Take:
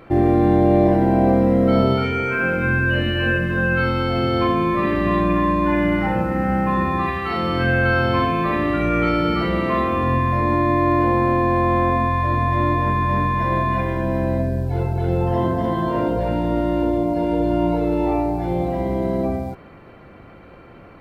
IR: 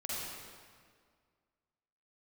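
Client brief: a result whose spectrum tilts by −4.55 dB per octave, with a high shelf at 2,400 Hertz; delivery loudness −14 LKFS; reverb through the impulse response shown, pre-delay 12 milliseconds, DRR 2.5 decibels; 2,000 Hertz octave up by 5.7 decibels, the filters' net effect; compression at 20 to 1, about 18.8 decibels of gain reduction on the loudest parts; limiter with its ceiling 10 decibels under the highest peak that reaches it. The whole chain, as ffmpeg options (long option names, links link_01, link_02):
-filter_complex "[0:a]equalizer=frequency=2000:width_type=o:gain=3.5,highshelf=frequency=2400:gain=9,acompressor=threshold=-30dB:ratio=20,alimiter=level_in=6dB:limit=-24dB:level=0:latency=1,volume=-6dB,asplit=2[link_01][link_02];[1:a]atrim=start_sample=2205,adelay=12[link_03];[link_02][link_03]afir=irnorm=-1:irlink=0,volume=-5.5dB[link_04];[link_01][link_04]amix=inputs=2:normalize=0,volume=22.5dB"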